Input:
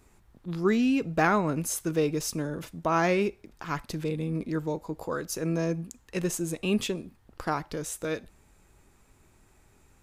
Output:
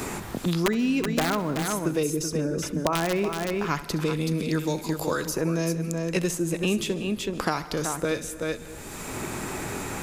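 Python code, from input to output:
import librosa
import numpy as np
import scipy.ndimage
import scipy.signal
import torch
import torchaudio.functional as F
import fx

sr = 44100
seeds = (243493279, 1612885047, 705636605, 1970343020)

y = fx.envelope_sharpen(x, sr, power=1.5, at=(2.03, 2.93))
y = (np.mod(10.0 ** (15.0 / 20.0) * y + 1.0, 2.0) - 1.0) / 10.0 ** (15.0 / 20.0)
y = fx.echo_multitap(y, sr, ms=(66, 376), db=(-16.5, -9.0))
y = fx.rev_plate(y, sr, seeds[0], rt60_s=1.1, hf_ratio=0.55, predelay_ms=115, drr_db=19.0)
y = fx.band_squash(y, sr, depth_pct=100)
y = y * 10.0 ** (1.5 / 20.0)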